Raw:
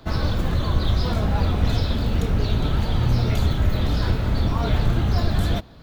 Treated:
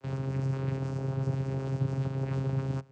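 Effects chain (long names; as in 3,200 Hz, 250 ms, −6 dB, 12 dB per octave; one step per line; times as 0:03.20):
lower of the sound and its delayed copy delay 4.1 ms
wrong playback speed 7.5 ips tape played at 15 ips
channel vocoder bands 8, saw 134 Hz
level −6 dB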